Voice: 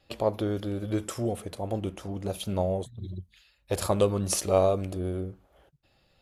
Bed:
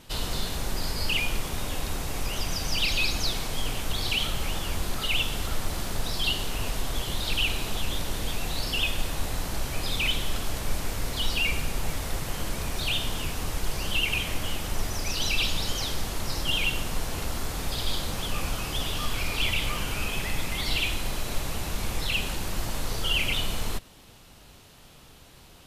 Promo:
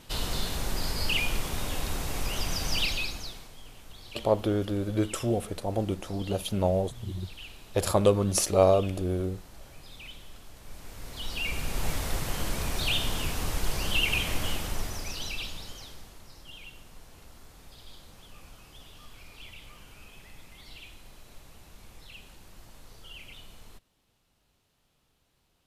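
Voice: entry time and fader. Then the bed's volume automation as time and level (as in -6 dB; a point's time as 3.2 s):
4.05 s, +2.0 dB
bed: 2.79 s -1 dB
3.56 s -19 dB
10.55 s -19 dB
11.86 s 0 dB
14.5 s 0 dB
16.31 s -20.5 dB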